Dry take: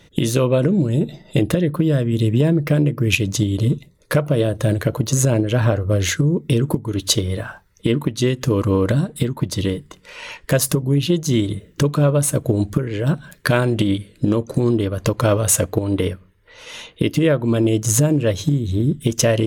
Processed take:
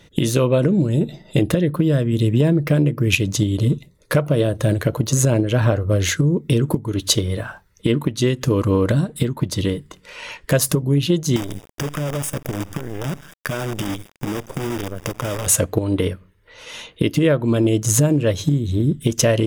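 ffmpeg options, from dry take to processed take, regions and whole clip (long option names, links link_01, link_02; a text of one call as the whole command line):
ffmpeg -i in.wav -filter_complex "[0:a]asettb=1/sr,asplit=3[link_01][link_02][link_03];[link_01]atrim=end=11.364[link_04];[link_02]atrim=start=11.36:end=15.47,asetpts=PTS-STARTPTS,afade=type=in:duration=0.004:curve=qsin,afade=type=out:start_time=4.106:duration=0.004:curve=qsin,acrusher=bits=4:dc=4:mix=0:aa=0.000001,asuperstop=centerf=4200:order=8:qfactor=5.6,acompressor=threshold=-22dB:ratio=4:attack=3.2:release=140:knee=1:detection=peak[link_05];[link_03]atrim=start=15.466[link_06];[link_04][link_05]acrossfade=duration=0.004:curve1=hsin:curve2=qsin[link_07];[link_07][link_06]acrossfade=duration=0.004:curve1=qsin:curve2=hsin" out.wav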